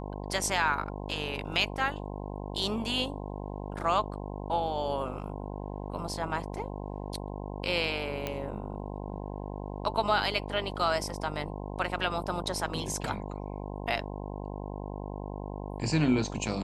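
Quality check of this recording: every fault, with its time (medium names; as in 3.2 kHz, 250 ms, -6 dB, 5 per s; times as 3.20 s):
buzz 50 Hz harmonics 21 -38 dBFS
8.27 s: pop -17 dBFS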